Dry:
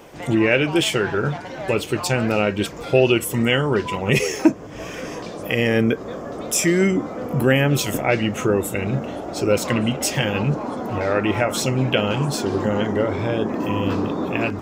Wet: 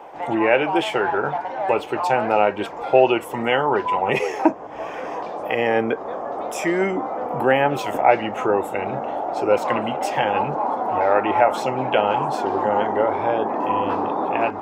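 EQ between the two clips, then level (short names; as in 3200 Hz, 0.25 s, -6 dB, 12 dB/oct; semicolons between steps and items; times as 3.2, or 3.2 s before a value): three-band isolator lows -12 dB, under 280 Hz, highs -13 dB, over 3000 Hz; bell 830 Hz +15 dB 0.76 oct; -2.0 dB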